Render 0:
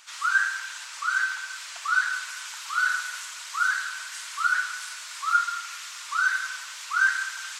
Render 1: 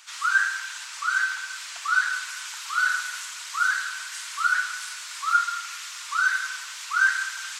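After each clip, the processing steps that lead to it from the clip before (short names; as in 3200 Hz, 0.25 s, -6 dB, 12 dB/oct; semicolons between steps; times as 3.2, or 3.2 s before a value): HPF 700 Hz 6 dB/oct; gain +2 dB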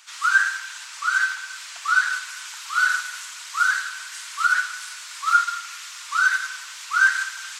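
in parallel at +1 dB: limiter -17 dBFS, peak gain reduction 7 dB; on the sum: upward expander 1.5:1, over -26 dBFS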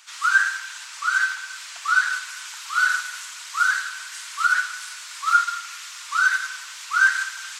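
nothing audible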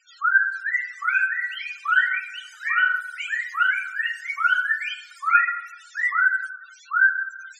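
loudest bins only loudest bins 8; echoes that change speed 0.465 s, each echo +4 st, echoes 3, each echo -6 dB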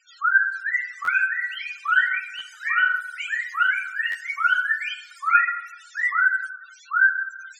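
stuck buffer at 1.04/2.38/4.11, samples 512, times 2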